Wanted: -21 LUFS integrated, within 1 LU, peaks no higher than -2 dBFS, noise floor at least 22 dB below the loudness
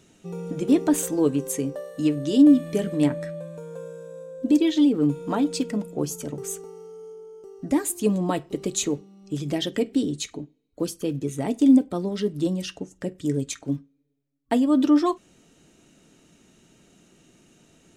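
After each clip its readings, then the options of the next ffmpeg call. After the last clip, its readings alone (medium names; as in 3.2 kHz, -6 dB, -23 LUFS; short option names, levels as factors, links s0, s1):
loudness -24.0 LUFS; peak level -7.0 dBFS; loudness target -21.0 LUFS
-> -af "volume=1.41"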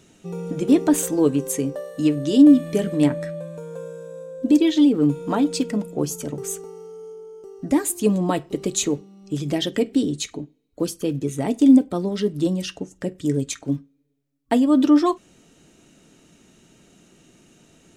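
loudness -21.0 LUFS; peak level -4.0 dBFS; noise floor -58 dBFS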